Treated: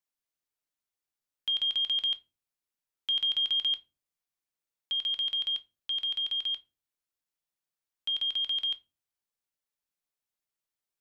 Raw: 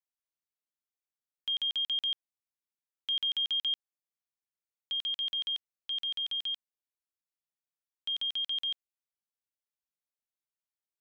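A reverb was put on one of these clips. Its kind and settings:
rectangular room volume 120 cubic metres, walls furnished, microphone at 0.37 metres
level +2.5 dB

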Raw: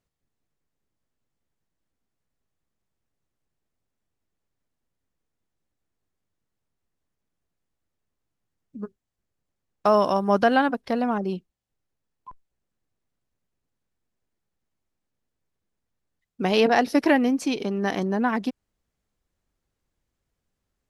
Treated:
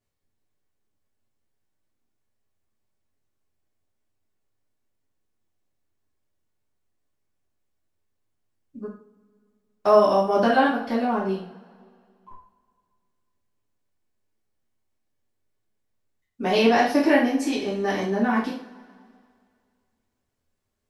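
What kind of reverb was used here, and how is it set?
coupled-rooms reverb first 0.43 s, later 2.2 s, from −22 dB, DRR −7.5 dB
level −7 dB

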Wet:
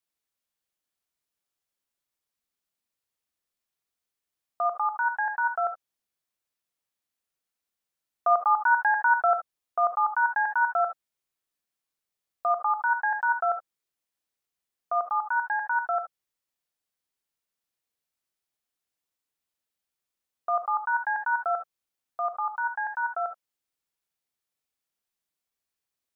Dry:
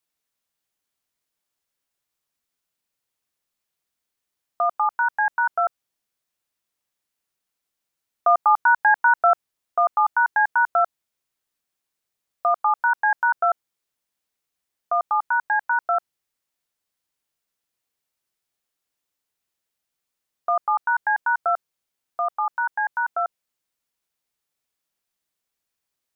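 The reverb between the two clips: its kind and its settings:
reverb whose tail is shaped and stops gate 90 ms rising, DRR 7 dB
level −6 dB

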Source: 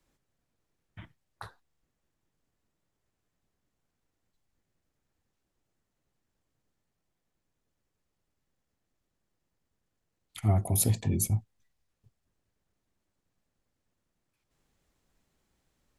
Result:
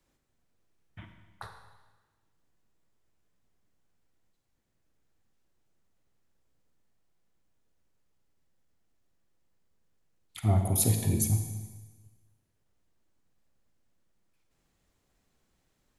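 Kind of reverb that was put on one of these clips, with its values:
four-comb reverb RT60 1.3 s, combs from 33 ms, DRR 5 dB

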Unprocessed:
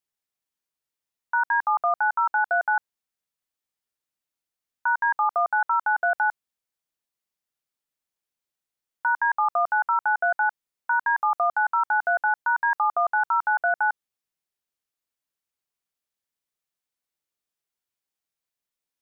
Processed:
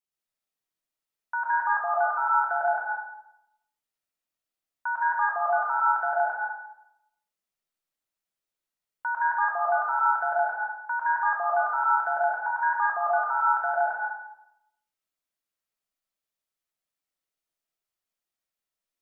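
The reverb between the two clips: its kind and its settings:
comb and all-pass reverb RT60 0.83 s, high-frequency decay 0.55×, pre-delay 80 ms, DRR −5 dB
level −6.5 dB

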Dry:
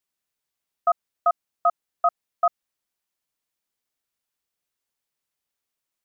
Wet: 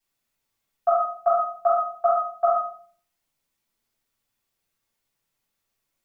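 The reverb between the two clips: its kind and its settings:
rectangular room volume 460 cubic metres, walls furnished, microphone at 8.5 metres
level −5 dB

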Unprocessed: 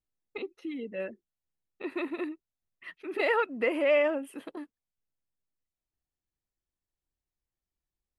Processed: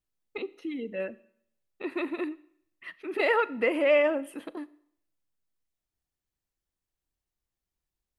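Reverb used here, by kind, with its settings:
four-comb reverb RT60 0.67 s, combs from 27 ms, DRR 18.5 dB
level +2 dB

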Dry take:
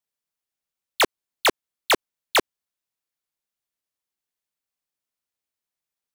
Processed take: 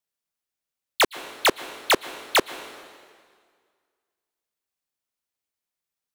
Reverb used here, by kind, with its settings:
dense smooth reverb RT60 1.9 s, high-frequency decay 0.9×, pre-delay 105 ms, DRR 15 dB

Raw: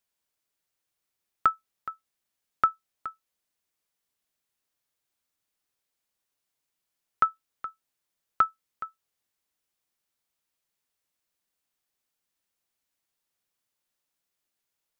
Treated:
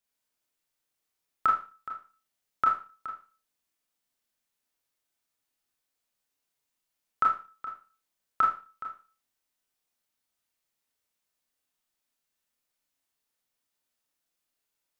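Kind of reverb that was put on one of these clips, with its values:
four-comb reverb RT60 0.35 s, combs from 25 ms, DRR −2 dB
level −4 dB

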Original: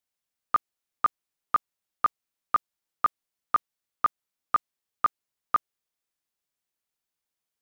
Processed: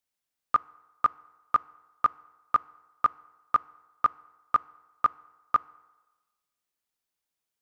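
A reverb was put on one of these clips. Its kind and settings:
feedback delay network reverb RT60 1.2 s, low-frequency decay 0.75×, high-frequency decay 0.65×, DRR 19.5 dB

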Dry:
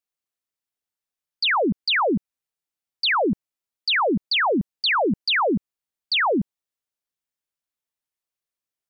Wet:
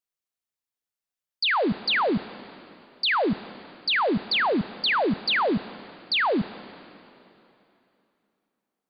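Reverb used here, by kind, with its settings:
dense smooth reverb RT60 3 s, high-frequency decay 0.9×, DRR 15 dB
level −2.5 dB

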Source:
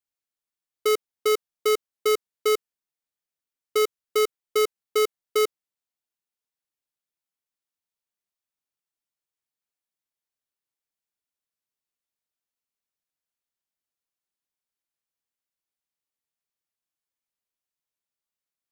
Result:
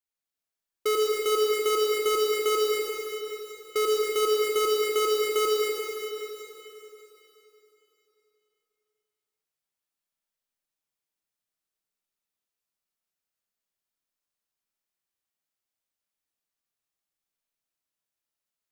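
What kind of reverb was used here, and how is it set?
comb and all-pass reverb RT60 3.4 s, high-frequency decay 1×, pre-delay 35 ms, DRR −4.5 dB
level −4 dB

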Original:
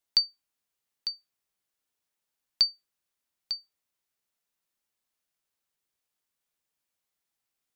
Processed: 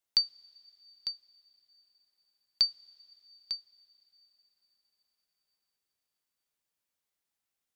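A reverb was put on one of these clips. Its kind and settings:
coupled-rooms reverb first 0.33 s, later 4.8 s, from −18 dB, DRR 16 dB
level −2.5 dB

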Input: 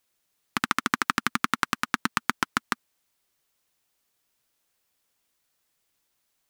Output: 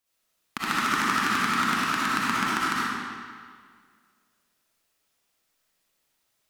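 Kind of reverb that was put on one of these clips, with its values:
comb and all-pass reverb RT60 1.9 s, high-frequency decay 0.85×, pre-delay 20 ms, DRR −9.5 dB
level −7 dB

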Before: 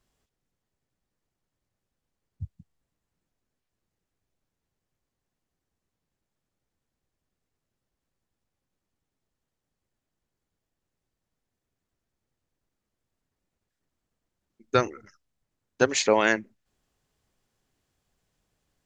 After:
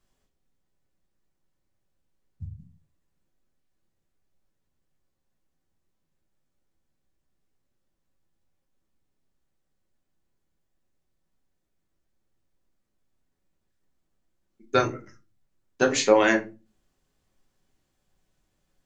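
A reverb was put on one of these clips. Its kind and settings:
rectangular room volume 120 cubic metres, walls furnished, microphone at 1.1 metres
level −1.5 dB

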